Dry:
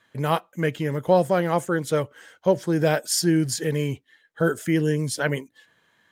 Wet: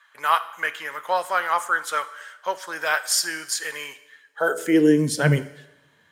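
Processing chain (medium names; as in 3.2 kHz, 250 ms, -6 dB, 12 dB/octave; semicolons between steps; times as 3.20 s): two-slope reverb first 0.88 s, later 2.3 s, from -26 dB, DRR 12 dB; high-pass sweep 1.2 kHz -> 64 Hz, 4.21–5.63 s; trim +2 dB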